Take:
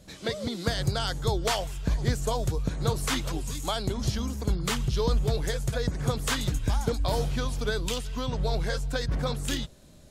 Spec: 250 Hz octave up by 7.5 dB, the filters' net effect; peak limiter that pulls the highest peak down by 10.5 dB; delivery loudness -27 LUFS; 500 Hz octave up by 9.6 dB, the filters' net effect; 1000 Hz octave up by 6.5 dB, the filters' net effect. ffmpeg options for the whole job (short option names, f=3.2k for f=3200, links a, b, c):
-af "equalizer=f=250:t=o:g=7.5,equalizer=f=500:t=o:g=8,equalizer=f=1k:t=o:g=5,alimiter=limit=-16dB:level=0:latency=1"